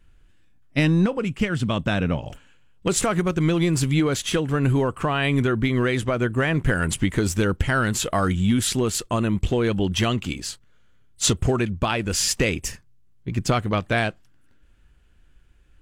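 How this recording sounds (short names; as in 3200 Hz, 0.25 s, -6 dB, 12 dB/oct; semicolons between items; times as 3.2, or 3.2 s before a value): noise floor -55 dBFS; spectral tilt -5.0 dB/oct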